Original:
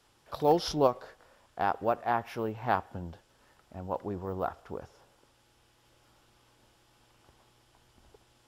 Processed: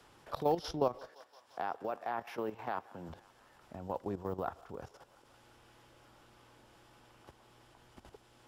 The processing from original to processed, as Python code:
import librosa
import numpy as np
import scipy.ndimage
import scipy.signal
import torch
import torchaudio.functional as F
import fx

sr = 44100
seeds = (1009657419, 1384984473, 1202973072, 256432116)

y = fx.bessel_highpass(x, sr, hz=260.0, order=2, at=(1.07, 3.08), fade=0.02)
y = fx.level_steps(y, sr, step_db=12)
y = fx.echo_thinned(y, sr, ms=172, feedback_pct=71, hz=680.0, wet_db=-21.5)
y = fx.band_squash(y, sr, depth_pct=40)